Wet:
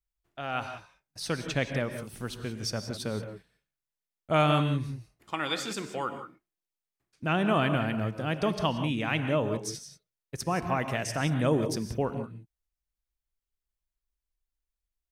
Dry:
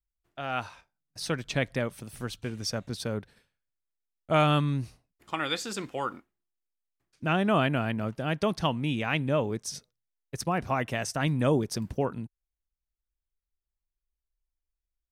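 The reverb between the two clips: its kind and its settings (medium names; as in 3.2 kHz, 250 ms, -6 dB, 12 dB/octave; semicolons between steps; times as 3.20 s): gated-style reverb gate 200 ms rising, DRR 8 dB; trim -1 dB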